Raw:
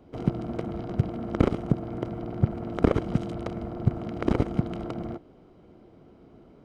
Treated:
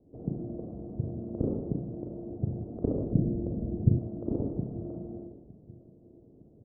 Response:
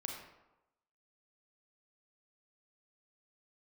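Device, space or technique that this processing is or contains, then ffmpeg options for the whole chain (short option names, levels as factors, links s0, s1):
next room: -filter_complex "[0:a]lowpass=f=590:w=0.5412,lowpass=f=590:w=1.3066[s0];[1:a]atrim=start_sample=2205[s1];[s0][s1]afir=irnorm=-1:irlink=0,lowpass=2600,asettb=1/sr,asplit=3[s2][s3][s4];[s2]atrim=end=3.114[s5];[s3]atrim=start=3.11:end=3.99,asetpts=PTS-STARTPTS,afade=t=in:d=0.004:c=qsin,afade=t=out:st=0.876:d=0.004:c=qsin,tiltshelf=f=750:g=9.5[s6];[s4]atrim=start=3.986[s7];[s5][s6]acrossfade=d=0.004:c1=hsin:c2=qsin[s8];[s8][s7]acrossfade=d=0.004:c1=qsin:c2=hsin,asplit=2[s9][s10];[s10]adelay=911,lowpass=f=910:p=1,volume=0.1,asplit=2[s11][s12];[s12]adelay=911,lowpass=f=910:p=1,volume=0.4,asplit=2[s13][s14];[s14]adelay=911,lowpass=f=910:p=1,volume=0.4[s15];[s9][s11][s13][s15]amix=inputs=4:normalize=0,volume=0.531"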